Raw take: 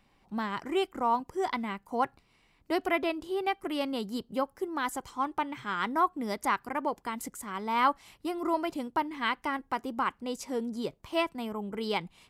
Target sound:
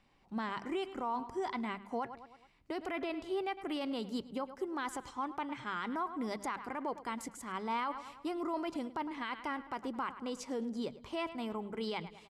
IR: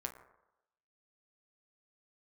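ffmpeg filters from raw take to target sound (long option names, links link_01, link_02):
-filter_complex "[0:a]lowpass=8200,bandreject=frequency=50:width_type=h:width=6,bandreject=frequency=100:width_type=h:width=6,bandreject=frequency=150:width_type=h:width=6,bandreject=frequency=200:width_type=h:width=6,asplit=2[link_01][link_02];[link_02]adelay=106,lowpass=frequency=4800:poles=1,volume=-18dB,asplit=2[link_03][link_04];[link_04]adelay=106,lowpass=frequency=4800:poles=1,volume=0.53,asplit=2[link_05][link_06];[link_06]adelay=106,lowpass=frequency=4800:poles=1,volume=0.53,asplit=2[link_07][link_08];[link_08]adelay=106,lowpass=frequency=4800:poles=1,volume=0.53[link_09];[link_01][link_03][link_05][link_07][link_09]amix=inputs=5:normalize=0,alimiter=level_in=1dB:limit=-24dB:level=0:latency=1:release=21,volume=-1dB,volume=-3dB"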